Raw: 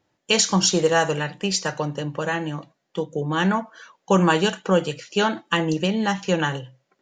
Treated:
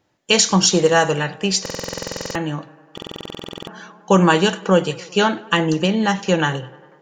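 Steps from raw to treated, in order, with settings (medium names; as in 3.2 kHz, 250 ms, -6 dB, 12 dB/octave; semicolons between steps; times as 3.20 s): on a send: tape echo 98 ms, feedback 76%, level -21 dB, low-pass 3.1 kHz; on the sum: buffer glitch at 1.61/2.93 s, samples 2048, times 15; trim +4 dB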